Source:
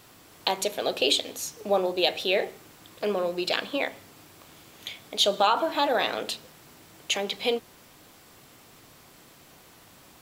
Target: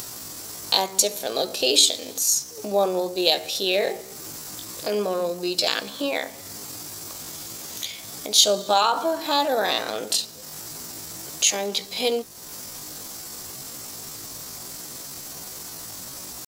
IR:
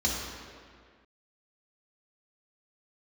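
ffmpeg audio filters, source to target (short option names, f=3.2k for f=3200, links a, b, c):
-af "atempo=0.62,highshelf=f=4k:t=q:w=1.5:g=9.5,acompressor=mode=upward:threshold=-29dB:ratio=2.5,volume=2dB"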